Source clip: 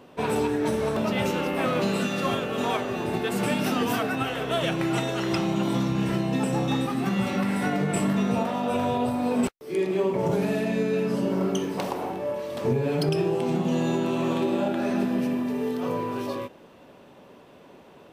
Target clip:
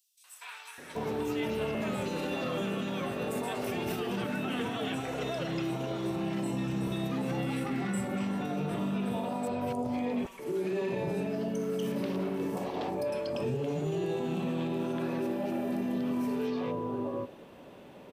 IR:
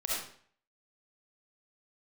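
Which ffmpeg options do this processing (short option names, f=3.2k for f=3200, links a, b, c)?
-filter_complex "[0:a]asplit=2[a][b];[1:a]atrim=start_sample=2205[c];[b][c]afir=irnorm=-1:irlink=0,volume=-28.5dB[d];[a][d]amix=inputs=2:normalize=0,alimiter=level_in=0.5dB:limit=-24dB:level=0:latency=1:release=88,volume=-0.5dB,acrossover=split=1200|5500[e][f][g];[f]adelay=240[h];[e]adelay=780[i];[i][h][g]amix=inputs=3:normalize=0"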